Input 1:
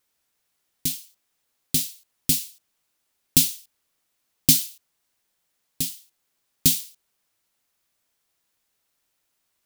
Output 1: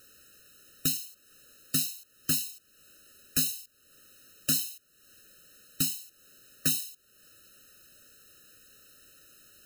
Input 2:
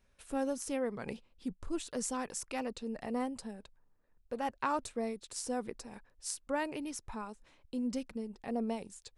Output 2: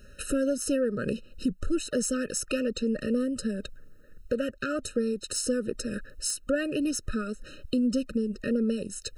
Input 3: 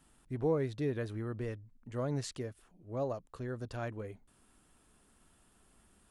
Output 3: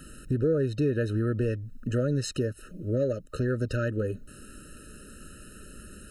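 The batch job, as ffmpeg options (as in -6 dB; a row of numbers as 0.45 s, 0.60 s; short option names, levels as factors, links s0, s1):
-af "acompressor=threshold=0.00355:ratio=2.5,aeval=exprs='0.15*sin(PI/2*7.08*val(0)/0.15)':c=same,afftfilt=real='re*eq(mod(floor(b*sr/1024/620),2),0)':imag='im*eq(mod(floor(b*sr/1024/620),2),0)':win_size=1024:overlap=0.75"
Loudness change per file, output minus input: -7.5 LU, +8.5 LU, +9.0 LU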